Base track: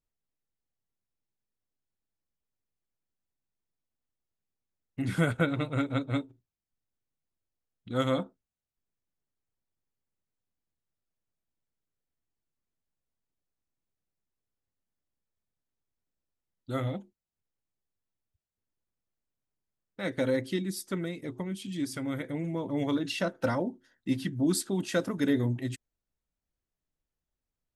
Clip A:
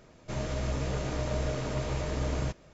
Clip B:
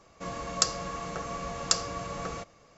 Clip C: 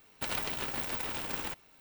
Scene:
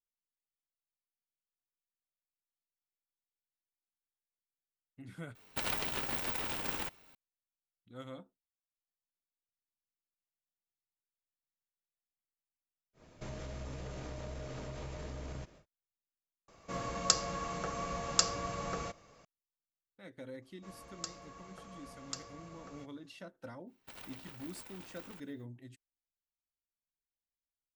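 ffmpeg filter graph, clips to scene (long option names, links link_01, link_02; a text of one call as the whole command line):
ffmpeg -i bed.wav -i cue0.wav -i cue1.wav -i cue2.wav -filter_complex "[3:a]asplit=2[link_01][link_02];[2:a]asplit=2[link_03][link_04];[0:a]volume=-19dB[link_05];[1:a]acompressor=threshold=-36dB:ratio=6:attack=3.2:release=140:knee=1:detection=peak[link_06];[link_05]asplit=2[link_07][link_08];[link_07]atrim=end=5.354[link_09];[link_01]atrim=end=1.8,asetpts=PTS-STARTPTS,volume=-1dB[link_10];[link_08]atrim=start=7.146[link_11];[link_06]atrim=end=2.73,asetpts=PTS-STARTPTS,volume=-3.5dB,afade=type=in:duration=0.1,afade=type=out:start_time=2.63:duration=0.1,adelay=12930[link_12];[link_03]atrim=end=2.77,asetpts=PTS-STARTPTS,volume=-2.5dB,afade=type=in:duration=0.004:curve=hsin,afade=type=out:start_time=2.766:duration=0.004:curve=hsin,adelay=16480[link_13];[link_04]atrim=end=2.77,asetpts=PTS-STARTPTS,volume=-17dB,afade=type=in:duration=0.004:curve=hsin,afade=type=out:start_time=2.766:duration=0.004:curve=hsin,adelay=20420[link_14];[link_02]atrim=end=1.8,asetpts=PTS-STARTPTS,volume=-16.5dB,afade=type=in:duration=0.05,afade=type=out:start_time=1.75:duration=0.05,adelay=23660[link_15];[link_09][link_10]acrossfade=duration=0.004:curve1=hsin:curve2=hsin[link_16];[link_16][link_11]acrossfade=duration=0.004:curve1=hsin:curve2=hsin[link_17];[link_17][link_12][link_13][link_14][link_15]amix=inputs=5:normalize=0" out.wav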